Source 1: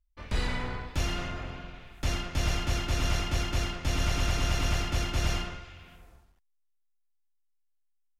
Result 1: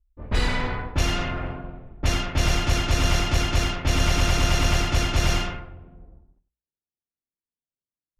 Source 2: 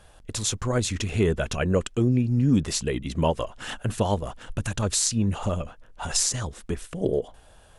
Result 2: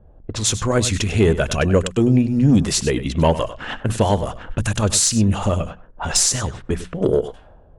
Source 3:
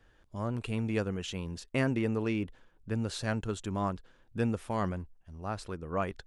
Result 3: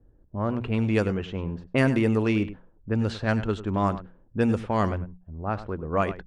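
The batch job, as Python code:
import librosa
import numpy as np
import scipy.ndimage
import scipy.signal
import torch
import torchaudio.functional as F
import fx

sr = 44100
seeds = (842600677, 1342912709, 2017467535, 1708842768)

y = fx.diode_clip(x, sr, knee_db=-6.0)
y = fx.hum_notches(y, sr, base_hz=60, count=3)
y = fx.fold_sine(y, sr, drive_db=4, ceiling_db=-5.5)
y = y + 10.0 ** (-14.0 / 20.0) * np.pad(y, (int(99 * sr / 1000.0), 0))[:len(y)]
y = fx.env_lowpass(y, sr, base_hz=340.0, full_db=-17.5)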